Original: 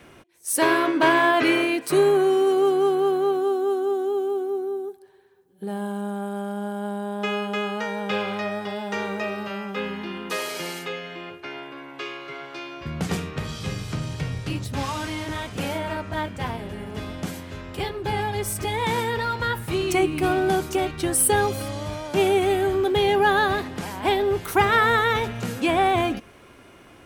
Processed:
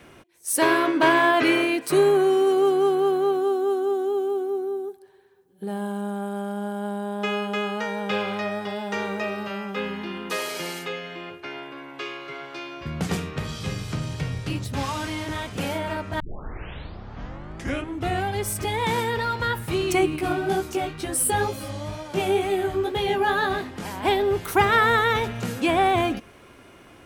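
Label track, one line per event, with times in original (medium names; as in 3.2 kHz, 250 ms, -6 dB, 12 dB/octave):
16.200000	16.200000	tape start 2.20 s
20.160000	23.850000	chorus 2.1 Hz, delay 15.5 ms, depth 5.1 ms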